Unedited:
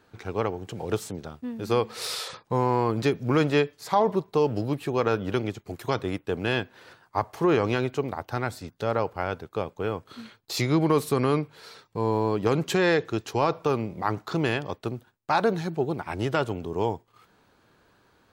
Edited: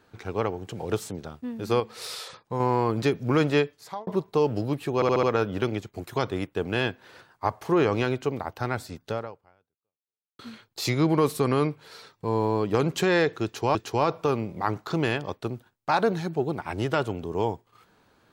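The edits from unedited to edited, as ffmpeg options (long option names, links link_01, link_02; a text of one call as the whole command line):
ffmpeg -i in.wav -filter_complex "[0:a]asplit=10[link_01][link_02][link_03][link_04][link_05][link_06][link_07][link_08][link_09][link_10];[link_01]atrim=end=1.802[link_11];[link_02]atrim=start=1.798:end=2.602,asetpts=PTS-STARTPTS,volume=-4.5dB[link_12];[link_03]atrim=start=2.598:end=4.07,asetpts=PTS-STARTPTS,afade=type=out:start_time=0.982:duration=0.49[link_13];[link_04]atrim=start=4.07:end=5.022,asetpts=PTS-STARTPTS,afade=type=in:duration=0.004:curve=hsin[link_14];[link_05]atrim=start=4.948:end=5.022[link_15];[link_06]atrim=start=4.948:end=5.022[link_16];[link_07]atrim=start=4.948:end=5.022[link_17];[link_08]atrim=start=4.948:end=10.11,asetpts=PTS-STARTPTS,afade=type=out:start_time=3.882:duration=1.28:curve=exp[link_18];[link_09]atrim=start=10.11:end=13.472,asetpts=PTS-STARTPTS,afade=type=in:duration=0.004:curve=hsin[link_19];[link_10]atrim=start=13.158[link_20];[link_11][link_12]acrossfade=duration=0.004:curve1=hsin:curve2=hsin[link_21];[link_13][link_14]concat=n=2:v=0:a=1[link_22];[link_21][link_22]acrossfade=duration=0.004:curve1=hsin:curve2=hsin[link_23];[link_23][link_15]acrossfade=duration=0.004:curve1=hsin:curve2=hsin[link_24];[link_24][link_16]acrossfade=duration=0.004:curve1=hsin:curve2=hsin[link_25];[link_25][link_17]acrossfade=duration=0.004:curve1=hsin:curve2=hsin[link_26];[link_18][link_19]concat=n=2:v=0:a=1[link_27];[link_26][link_27]acrossfade=duration=0.004:curve1=hsin:curve2=hsin[link_28];[link_28][link_20]acrossfade=duration=0.004:curve1=hsin:curve2=hsin" out.wav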